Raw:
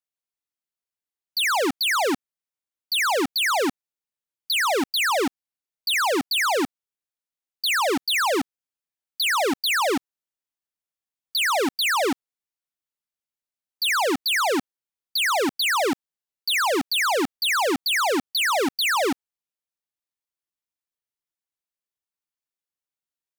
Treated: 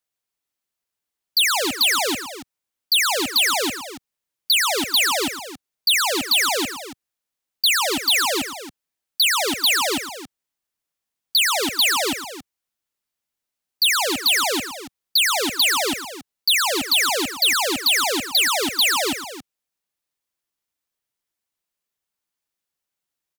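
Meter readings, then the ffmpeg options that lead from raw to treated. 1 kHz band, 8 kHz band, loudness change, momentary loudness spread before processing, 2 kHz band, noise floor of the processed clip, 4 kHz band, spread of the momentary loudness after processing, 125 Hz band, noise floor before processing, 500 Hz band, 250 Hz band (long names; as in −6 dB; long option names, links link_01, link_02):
−1.5 dB, +7.5 dB, +3.5 dB, 7 LU, +1.5 dB, −85 dBFS, +6.5 dB, 13 LU, +2.5 dB, below −85 dBFS, −2.5 dB, −2.0 dB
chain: -filter_complex "[0:a]acrossover=split=130|3000[link_01][link_02][link_03];[link_02]acompressor=threshold=-39dB:ratio=2[link_04];[link_01][link_04][link_03]amix=inputs=3:normalize=0,aecho=1:1:113|277:0.178|0.237,volume=7.5dB"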